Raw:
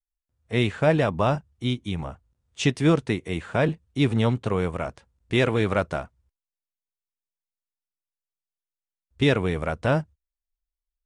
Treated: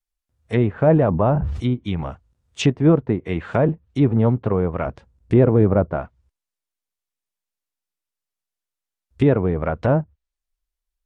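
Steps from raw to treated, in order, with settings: 4.86–5.92 tilt shelf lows +4.5 dB, about 780 Hz; treble ducked by the level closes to 920 Hz, closed at -21 dBFS; 0.84–1.74 sustainer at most 42 dB/s; gain +5 dB

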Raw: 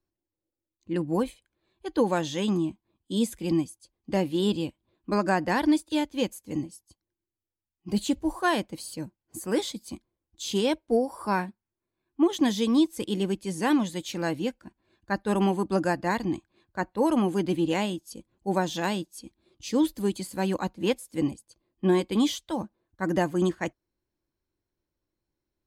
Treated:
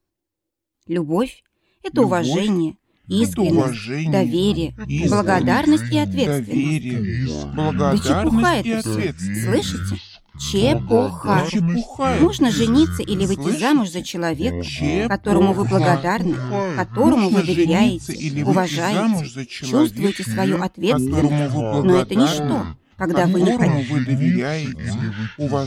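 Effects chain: 1.1–1.88 bell 2700 Hz +12.5 dB 0.29 oct; echoes that change speed 0.746 s, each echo -5 st, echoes 3; gain +7 dB

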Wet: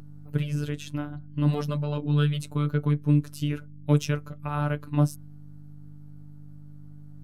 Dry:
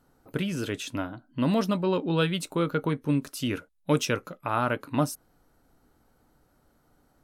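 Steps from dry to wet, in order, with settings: bell 120 Hz +13.5 dB 1.6 oct; hum 50 Hz, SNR 13 dB; robotiser 147 Hz; gain -3.5 dB

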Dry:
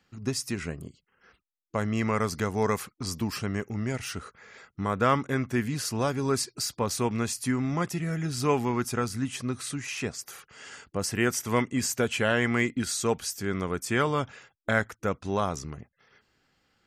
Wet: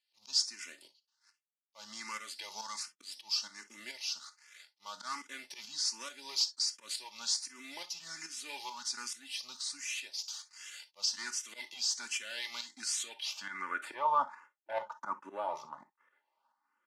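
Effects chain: CVSD 64 kbps; high shelf 2600 Hz +4 dB; comb 3.4 ms, depth 60%; sample leveller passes 2; HPF 140 Hz 24 dB/oct; auto swell 0.105 s; tremolo saw up 2.3 Hz, depth 60%; on a send at -11.5 dB: reverb, pre-delay 3 ms; on the sum: band-pass sweep 4700 Hz -> 1000 Hz, 12.93–14.07; in parallel at +2.5 dB: compressor, threshold -43 dBFS, peak gain reduction 19.5 dB; on the sum: bell 940 Hz +8.5 dB 0.37 oct; endless phaser +1.3 Hz; gain -4 dB

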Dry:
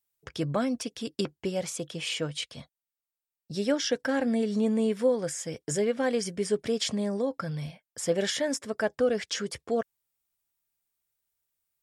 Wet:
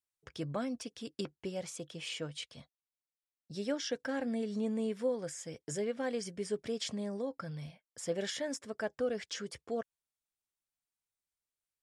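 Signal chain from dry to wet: LPF 11000 Hz 12 dB/oct; gain -8.5 dB

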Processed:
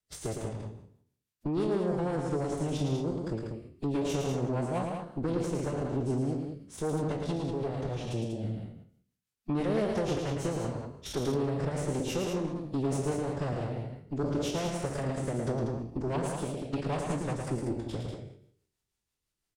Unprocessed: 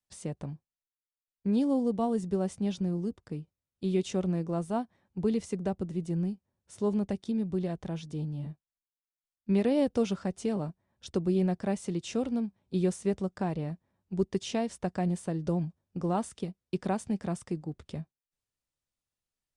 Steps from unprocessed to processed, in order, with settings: spectral trails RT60 0.62 s; rotary speaker horn 6 Hz; dynamic EQ 900 Hz, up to -4 dB, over -50 dBFS, Q 3.5; compressor 2:1, threshold -41 dBFS, peak gain reduction 10.5 dB; added harmonics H 6 -14 dB, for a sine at -25.5 dBFS; formant-preserving pitch shift -5 st; loudspeakers at several distances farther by 38 m -5 dB, 66 m -6 dB; gain +5 dB

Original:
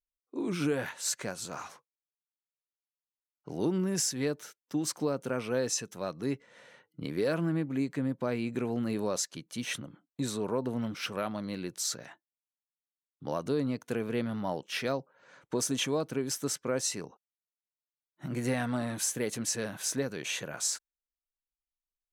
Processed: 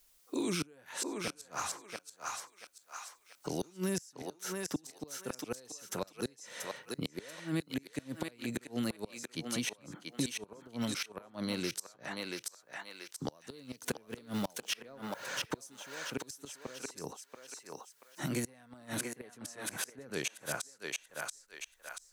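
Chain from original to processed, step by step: 13.82–16.04 G.711 law mismatch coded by mu; tone controls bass -4 dB, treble +6 dB; flipped gate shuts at -23 dBFS, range -31 dB; thinning echo 0.683 s, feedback 25%, high-pass 760 Hz, level -4 dB; three-band squash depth 70%; gain +3.5 dB

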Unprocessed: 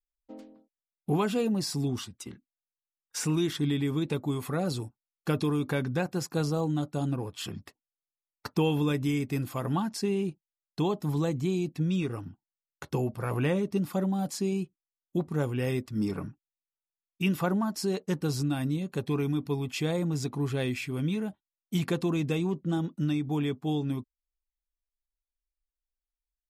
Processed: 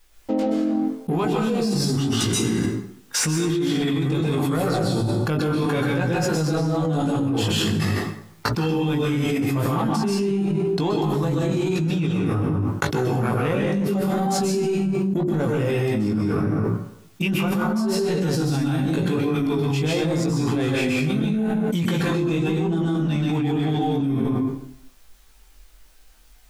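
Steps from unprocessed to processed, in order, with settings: in parallel at -5.5 dB: overloaded stage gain 34 dB; on the sum: high shelf 5900 Hz -4.5 dB; notches 60/120/180/240/300/360/420 Hz; plate-style reverb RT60 0.71 s, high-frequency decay 0.75×, pre-delay 0.115 s, DRR -2.5 dB; chorus 0.83 Hz, delay 17.5 ms, depth 2.3 ms; fast leveller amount 100%; gain -4.5 dB

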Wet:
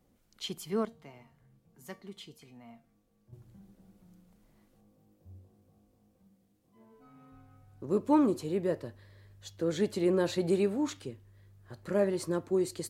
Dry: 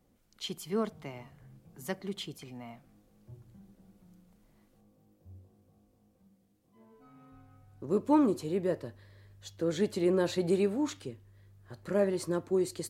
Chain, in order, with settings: 0.85–3.33 resonator 230 Hz, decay 0.25 s, harmonics all, mix 70%

